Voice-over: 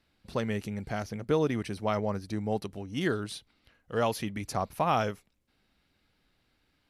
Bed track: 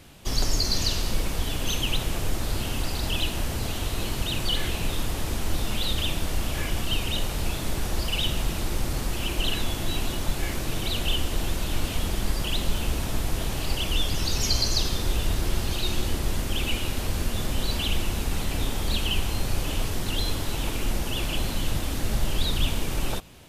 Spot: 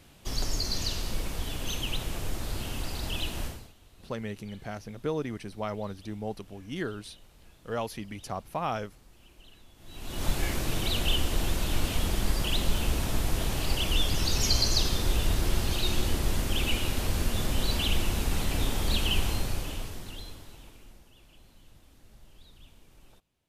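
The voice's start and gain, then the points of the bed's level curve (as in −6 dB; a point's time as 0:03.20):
3.75 s, −4.5 dB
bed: 0:03.46 −6 dB
0:03.75 −28.5 dB
0:09.74 −28.5 dB
0:10.25 −1 dB
0:19.29 −1 dB
0:21.13 −29.5 dB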